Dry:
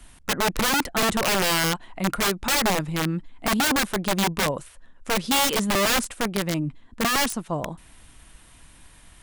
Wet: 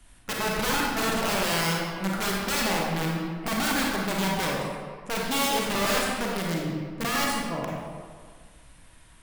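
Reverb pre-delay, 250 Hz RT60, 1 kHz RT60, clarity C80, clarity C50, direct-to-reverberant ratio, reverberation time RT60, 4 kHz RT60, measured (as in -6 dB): 33 ms, 1.8 s, 1.7 s, 1.5 dB, -1.0 dB, -3.0 dB, 1.7 s, 1.1 s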